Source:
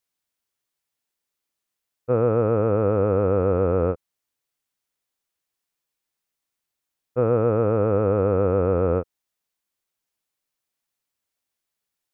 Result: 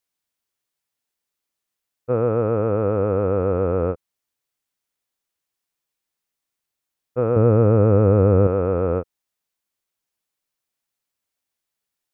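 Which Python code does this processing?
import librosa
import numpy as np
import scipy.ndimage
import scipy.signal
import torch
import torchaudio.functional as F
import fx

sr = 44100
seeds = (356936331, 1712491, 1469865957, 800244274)

y = fx.low_shelf(x, sr, hz=300.0, db=10.5, at=(7.36, 8.47))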